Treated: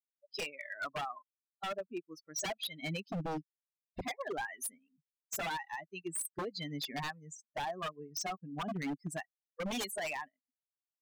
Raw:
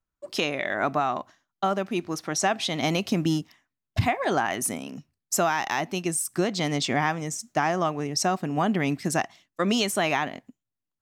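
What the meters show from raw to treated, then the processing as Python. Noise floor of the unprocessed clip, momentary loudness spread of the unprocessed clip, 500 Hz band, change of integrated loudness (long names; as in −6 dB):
below −85 dBFS, 6 LU, −14.5 dB, −13.5 dB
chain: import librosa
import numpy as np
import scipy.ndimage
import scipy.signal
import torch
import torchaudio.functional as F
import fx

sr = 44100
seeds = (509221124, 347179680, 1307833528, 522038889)

y = fx.bin_expand(x, sr, power=3.0)
y = 10.0 ** (-28.5 / 20.0) * (np.abs((y / 10.0 ** (-28.5 / 20.0) + 3.0) % 4.0 - 2.0) - 1.0)
y = y * 10.0 ** (-3.0 / 20.0)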